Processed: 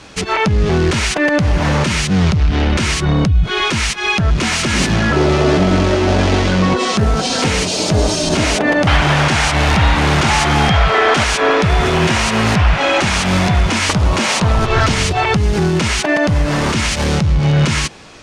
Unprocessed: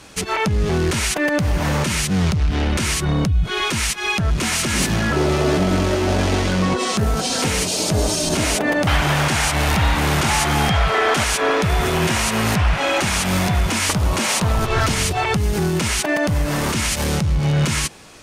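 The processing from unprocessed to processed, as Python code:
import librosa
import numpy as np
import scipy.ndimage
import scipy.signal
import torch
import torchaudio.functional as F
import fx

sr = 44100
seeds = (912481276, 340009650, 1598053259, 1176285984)

y = scipy.signal.sosfilt(scipy.signal.butter(2, 6000.0, 'lowpass', fs=sr, output='sos'), x)
y = y * librosa.db_to_amplitude(5.0)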